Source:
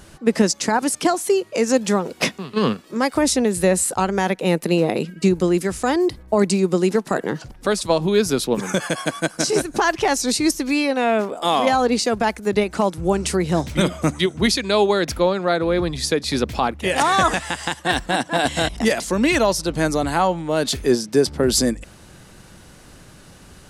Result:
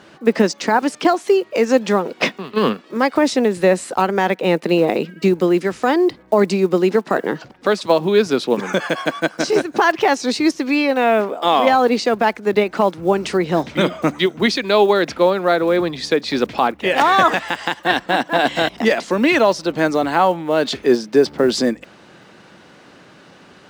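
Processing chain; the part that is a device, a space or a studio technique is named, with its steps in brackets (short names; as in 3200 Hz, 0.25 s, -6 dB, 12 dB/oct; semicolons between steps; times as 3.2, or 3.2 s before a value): early digital voice recorder (BPF 230–3700 Hz; block floating point 7-bit); gain +4 dB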